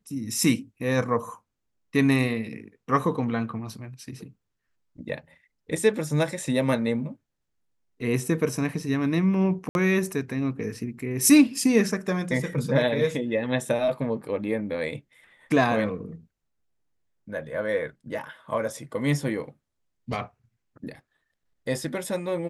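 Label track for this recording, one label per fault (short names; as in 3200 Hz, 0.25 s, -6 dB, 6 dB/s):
9.690000	9.750000	gap 61 ms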